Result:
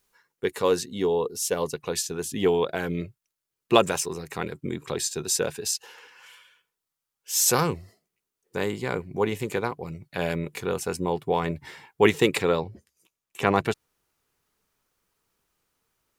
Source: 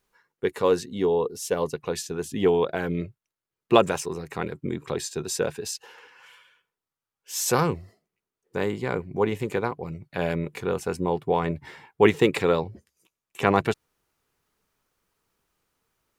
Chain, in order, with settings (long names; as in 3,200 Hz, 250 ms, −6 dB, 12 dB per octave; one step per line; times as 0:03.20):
high-shelf EQ 3,300 Hz +9 dB, from 0:12.38 +3.5 dB
level −1.5 dB